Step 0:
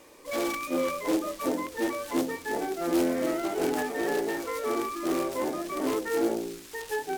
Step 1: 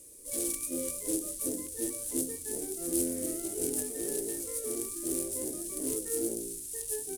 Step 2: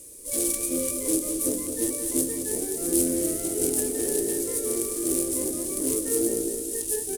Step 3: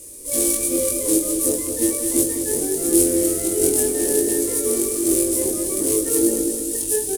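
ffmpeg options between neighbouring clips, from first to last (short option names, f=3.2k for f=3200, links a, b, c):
-af "firequalizer=gain_entry='entry(100,0);entry(160,-9);entry(460,-10);entry(820,-28);entry(2800,-16);entry(9700,14);entry(15000,-3)':delay=0.05:min_phase=1,volume=2.5dB"
-filter_complex "[0:a]asplit=2[a][b];[b]adelay=211,lowpass=f=4.8k:p=1,volume=-6.5dB,asplit=2[c][d];[d]adelay=211,lowpass=f=4.8k:p=1,volume=0.52,asplit=2[e][f];[f]adelay=211,lowpass=f=4.8k:p=1,volume=0.52,asplit=2[g][h];[h]adelay=211,lowpass=f=4.8k:p=1,volume=0.52,asplit=2[i][j];[j]adelay=211,lowpass=f=4.8k:p=1,volume=0.52,asplit=2[k][l];[l]adelay=211,lowpass=f=4.8k:p=1,volume=0.52[m];[a][c][e][g][i][k][m]amix=inputs=7:normalize=0,volume=7dB"
-filter_complex "[0:a]asplit=2[a][b];[b]adelay=21,volume=-3dB[c];[a][c]amix=inputs=2:normalize=0,volume=4.5dB"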